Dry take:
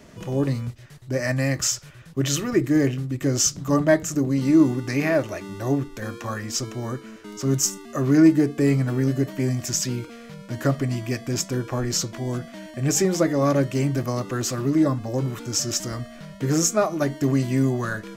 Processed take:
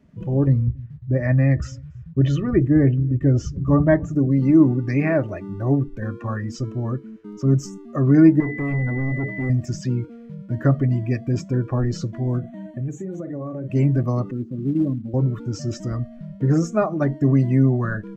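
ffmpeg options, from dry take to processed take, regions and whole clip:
-filter_complex "[0:a]asettb=1/sr,asplit=3[s0][s1][s2];[s0]atrim=end=0.474[s3];[s1]atrim=start=0.47:end=4.13,asetpts=PTS-STARTPTS,afade=t=in:d=0.004:c=qsin,afade=t=out:st=3.656:d=0.004:c=qsin,lowpass=f=2700:p=1,equalizer=f=68:w=1.8:g=13,aecho=1:1:279:0.0668,atrim=end_sample=161406[s4];[s2]atrim=start=4.126[s5];[s3][s4]acrossfade=d=0.004:c1=hsin:c2=qsin[s6];[s6][s5]acrossfade=d=0.004:c1=qsin:c2=hsin,asettb=1/sr,asplit=3[s7][s8][s9];[s7]atrim=end=8.404[s10];[s8]atrim=start=8.4:end=9.5,asetpts=PTS-STARTPTS,afade=t=in:d=0.004:c=qsin,afade=t=out:st=1.096:d=0.004:c=qsin,bandreject=f=60:t=h:w=6,bandreject=f=120:t=h:w=6,bandreject=f=180:t=h:w=6,bandreject=f=240:t=h:w=6,bandreject=f=300:t=h:w=6,bandreject=f=360:t=h:w=6,bandreject=f=420:t=h:w=6,bandreject=f=480:t=h:w=6,bandreject=f=540:t=h:w=6,volume=20,asoftclip=hard,volume=0.0501,aeval=exprs='val(0)+0.0282*sin(2*PI*2000*n/s)':c=same[s11];[s9]atrim=start=9.496[s12];[s10][s11]acrossfade=d=0.004:c1=hsin:c2=qsin[s13];[s13][s12]acrossfade=d=0.004:c1=qsin:c2=hsin,asettb=1/sr,asplit=3[s14][s15][s16];[s14]atrim=end=12.394[s17];[s15]atrim=start=12.39:end=13.7,asetpts=PTS-STARTPTS,afade=t=in:d=0.004:c=qsin,afade=t=out:st=1.306:d=0.004:c=qsin,asplit=2[s18][s19];[s19]adelay=46,volume=0.355[s20];[s18][s20]amix=inputs=2:normalize=0,atrim=end_sample=57771,acompressor=threshold=0.0398:ratio=16:attack=3.2:release=140:knee=1:detection=peak,asuperstop=centerf=5000:order=4:qfactor=3.2[s21];[s16]atrim=start=13.696[s22];[s17][s21]acrossfade=d=0.004:c1=hsin:c2=qsin[s23];[s23][s22]acrossfade=d=0.004:c1=qsin:c2=hsin,asettb=1/sr,asplit=3[s24][s25][s26];[s24]atrim=end=14.314[s27];[s25]atrim=start=14.31:end=15.14,asetpts=PTS-STARTPTS,afade=t=in:d=0.004:c=qsin,afade=t=out:st=0.826:d=0.004:c=qsin,bandpass=f=220:t=q:w=1.7,acrusher=bits=4:mode=log:mix=0:aa=0.000001[s28];[s26]atrim=start=15.136[s29];[s27][s28]acrossfade=d=0.004:c1=hsin:c2=qsin[s30];[s30][s29]acrossfade=d=0.004:c1=qsin:c2=hsin,afftdn=nr=16:nf=-34,acrossover=split=4700[s31][s32];[s32]acompressor=threshold=0.0178:ratio=4:attack=1:release=60[s33];[s31][s33]amix=inputs=2:normalize=0,bass=f=250:g=7,treble=f=4000:g=-10"

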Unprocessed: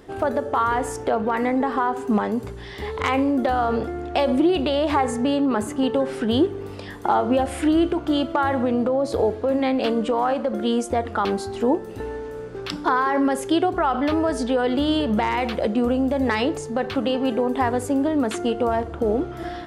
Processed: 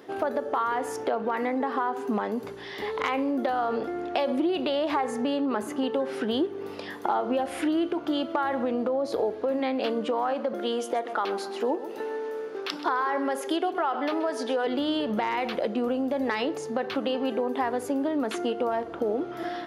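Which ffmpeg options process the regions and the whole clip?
-filter_complex "[0:a]asettb=1/sr,asplit=3[s0][s1][s2];[s0]atrim=end=10.534[s3];[s1]atrim=start=10.53:end=14.67,asetpts=PTS-STARTPTS,afade=t=in:d=0.004:c=qsin,afade=t=out:st=4.136:d=0.004:c=qsin,highpass=300,aecho=1:1:129|258|387:0.178|0.0587|0.0194,atrim=end_sample=182574[s4];[s2]atrim=start=14.666[s5];[s3][s4]acrossfade=d=0.004:c1=hsin:c2=qsin[s6];[s6][s5]acrossfade=d=0.004:c1=qsin:c2=hsin,highpass=250,equalizer=f=8100:w=3.1:g=-10.5,acompressor=threshold=0.0447:ratio=2"

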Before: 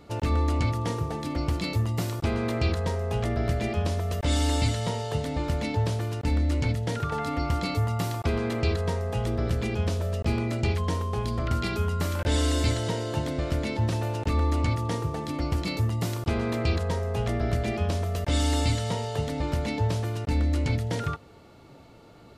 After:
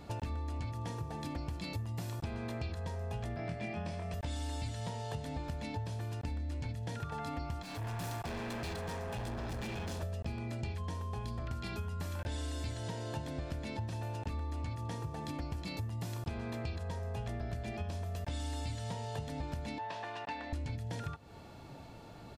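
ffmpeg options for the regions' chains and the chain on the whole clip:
-filter_complex "[0:a]asettb=1/sr,asplit=3[s0][s1][s2];[s0]atrim=end=3.364[s3];[s1]atrim=start=3.36:end=4.14,asetpts=PTS-STARTPTS,afade=t=in:d=0.004:c=qsin,afade=t=out:st=0.776:d=0.004:c=qsin,highpass=140,equalizer=f=170:t=q:w=4:g=7,equalizer=f=420:t=q:w=4:g=-4,equalizer=f=2200:t=q:w=4:g=6,equalizer=f=3900:t=q:w=4:g=-4,equalizer=f=6800:t=q:w=4:g=-8,lowpass=f=8700:w=0.5412,lowpass=f=8700:w=1.3066,asplit=2[s4][s5];[s5]adelay=24,volume=0.668[s6];[s4][s6]amix=inputs=2:normalize=0,atrim=end_sample=34398[s7];[s2]atrim=start=4.136[s8];[s3][s7]acrossfade=d=0.004:c1=hsin:c2=qsin[s9];[s9][s8]acrossfade=d=0.004:c1=qsin:c2=hsin,asettb=1/sr,asplit=3[s10][s11][s12];[s10]atrim=end=7.624[s13];[s11]atrim=start=7.62:end=10.03,asetpts=PTS-STARTPTS,afade=t=in:d=0.004:c=qsin,afade=t=out:st=2.406:d=0.004:c=qsin,equalizer=f=82:w=1.9:g=-9,volume=56.2,asoftclip=hard,volume=0.0178[s14];[s12]atrim=start=10.026[s15];[s13][s14]acrossfade=d=0.004:c1=hsin:c2=qsin[s16];[s16][s15]acrossfade=d=0.004:c1=qsin:c2=hsin,asettb=1/sr,asplit=3[s17][s18][s19];[s17]atrim=end=19.784[s20];[s18]atrim=start=19.78:end=20.53,asetpts=PTS-STARTPTS,afade=t=in:d=0.004:c=qsin,afade=t=out:st=0.746:d=0.004:c=qsin,highpass=580,lowpass=3300,aecho=1:1:1.1:0.31,atrim=end_sample=33075[s21];[s19]atrim=start=20.526[s22];[s20][s21]acrossfade=d=0.004:c1=hsin:c2=qsin[s23];[s23][s22]acrossfade=d=0.004:c1=qsin:c2=hsin,aecho=1:1:1.2:0.32,acompressor=threshold=0.0141:ratio=6"

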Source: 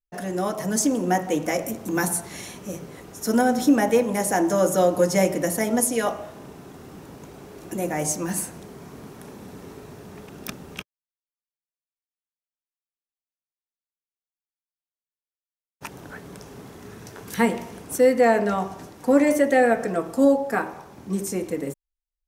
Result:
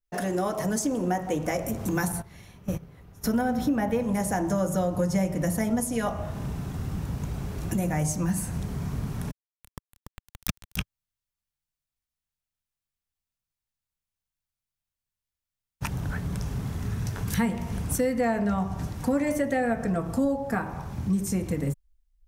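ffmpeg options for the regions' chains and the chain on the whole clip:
-filter_complex "[0:a]asettb=1/sr,asplit=3[s0][s1][s2];[s0]atrim=end=2.124[s3];[s1]atrim=start=2.12:end=4,asetpts=PTS-STARTPTS,afade=t=in:d=0.004:c=qsin,afade=t=out:st=1.876:d=0.004:c=qsin,agate=range=0.158:threshold=0.02:ratio=16:release=100:detection=peak,equalizer=f=7700:t=o:w=1.2:g=-10[s4];[s2]atrim=start=3.996[s5];[s3][s4]acrossfade=d=0.004:c1=hsin:c2=qsin[s6];[s6][s5]acrossfade=d=0.004:c1=qsin:c2=hsin,asettb=1/sr,asplit=3[s7][s8][s9];[s7]atrim=end=9.314[s10];[s8]atrim=start=9.31:end=10.77,asetpts=PTS-STARTPTS,afade=t=in:d=0.004:c=qsin,afade=t=out:st=1.456:d=0.004:c=qsin,aeval=exprs='val(0)*gte(abs(val(0)),0.0282)':c=same,aecho=1:1:288:0.596,atrim=end_sample=64386[s11];[s9]atrim=start=10.766[s12];[s10][s11]acrossfade=d=0.004:c1=hsin:c2=qsin[s13];[s13][s12]acrossfade=d=0.004:c1=qsin:c2=hsin,asubboost=boost=11:cutoff=110,acompressor=threshold=0.0355:ratio=3,adynamicequalizer=threshold=0.00562:dfrequency=1600:dqfactor=0.7:tfrequency=1600:tqfactor=0.7:attack=5:release=100:ratio=0.375:range=2.5:mode=cutabove:tftype=highshelf,volume=1.58"

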